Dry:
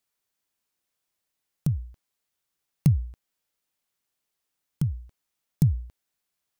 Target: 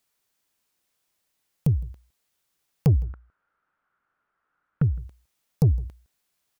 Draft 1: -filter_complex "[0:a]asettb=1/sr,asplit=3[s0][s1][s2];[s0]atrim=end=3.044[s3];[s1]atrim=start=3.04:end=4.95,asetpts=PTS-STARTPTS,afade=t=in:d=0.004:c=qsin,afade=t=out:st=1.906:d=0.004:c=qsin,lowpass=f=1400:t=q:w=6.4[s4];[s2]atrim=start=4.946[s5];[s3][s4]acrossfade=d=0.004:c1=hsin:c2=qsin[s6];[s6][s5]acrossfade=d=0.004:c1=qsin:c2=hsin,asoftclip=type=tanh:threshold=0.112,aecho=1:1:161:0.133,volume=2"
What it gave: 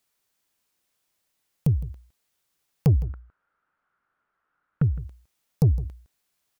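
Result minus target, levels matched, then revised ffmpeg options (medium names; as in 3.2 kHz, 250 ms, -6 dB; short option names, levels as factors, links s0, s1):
echo-to-direct +7 dB
-filter_complex "[0:a]asettb=1/sr,asplit=3[s0][s1][s2];[s0]atrim=end=3.044[s3];[s1]atrim=start=3.04:end=4.95,asetpts=PTS-STARTPTS,afade=t=in:d=0.004:c=qsin,afade=t=out:st=1.906:d=0.004:c=qsin,lowpass=f=1400:t=q:w=6.4[s4];[s2]atrim=start=4.946[s5];[s3][s4]acrossfade=d=0.004:c1=hsin:c2=qsin[s6];[s6][s5]acrossfade=d=0.004:c1=qsin:c2=hsin,asoftclip=type=tanh:threshold=0.112,aecho=1:1:161:0.0596,volume=2"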